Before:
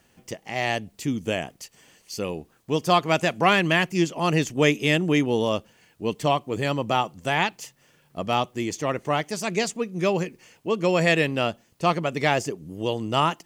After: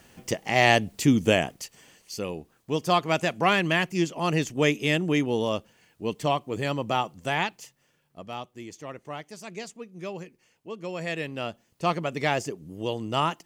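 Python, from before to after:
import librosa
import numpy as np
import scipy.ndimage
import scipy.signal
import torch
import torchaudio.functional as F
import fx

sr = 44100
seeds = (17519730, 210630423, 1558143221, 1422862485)

y = fx.gain(x, sr, db=fx.line((1.2, 6.5), (2.24, -3.0), (7.33, -3.0), (8.32, -13.0), (10.95, -13.0), (11.87, -3.5)))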